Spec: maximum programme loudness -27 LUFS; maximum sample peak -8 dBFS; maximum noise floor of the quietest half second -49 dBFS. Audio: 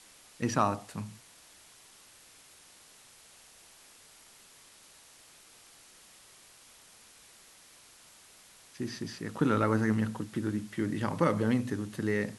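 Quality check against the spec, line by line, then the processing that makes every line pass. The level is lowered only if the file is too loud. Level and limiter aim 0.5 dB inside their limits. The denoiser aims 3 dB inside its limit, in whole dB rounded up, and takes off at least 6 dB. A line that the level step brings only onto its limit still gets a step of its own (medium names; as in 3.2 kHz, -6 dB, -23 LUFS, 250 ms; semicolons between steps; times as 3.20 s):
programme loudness -31.5 LUFS: pass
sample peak -12.0 dBFS: pass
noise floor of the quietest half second -57 dBFS: pass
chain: none needed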